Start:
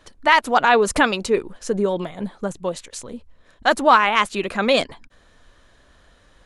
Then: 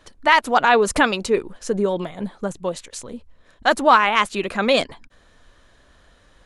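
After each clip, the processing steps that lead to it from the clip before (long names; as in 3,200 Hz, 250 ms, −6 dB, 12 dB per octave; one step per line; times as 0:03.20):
no processing that can be heard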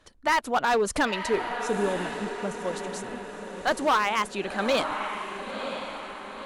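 feedback delay with all-pass diffusion 988 ms, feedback 50%, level −8.5 dB
gain into a clipping stage and back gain 11 dB
harmonic generator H 2 −27 dB, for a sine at −10.5 dBFS
level −6.5 dB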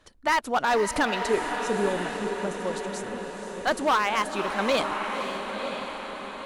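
feedback delay with all-pass diffusion 518 ms, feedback 44%, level −9 dB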